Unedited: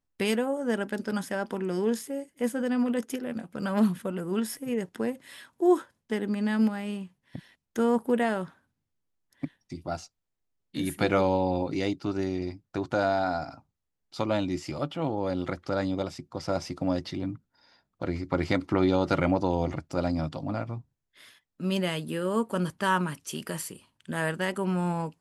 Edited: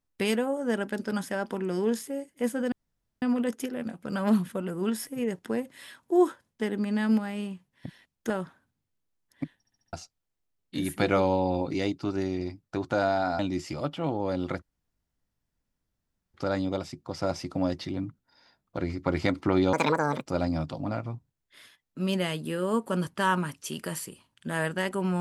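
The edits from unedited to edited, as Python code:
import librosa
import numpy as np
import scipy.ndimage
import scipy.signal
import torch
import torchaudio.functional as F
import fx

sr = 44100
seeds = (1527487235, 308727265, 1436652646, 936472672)

y = fx.edit(x, sr, fx.insert_room_tone(at_s=2.72, length_s=0.5),
    fx.cut(start_s=7.8, length_s=0.51),
    fx.stutter_over(start_s=9.59, slice_s=0.07, count=5),
    fx.cut(start_s=13.4, length_s=0.97),
    fx.insert_room_tone(at_s=15.6, length_s=1.72),
    fx.speed_span(start_s=18.99, length_s=0.9, speed=1.7), tone=tone)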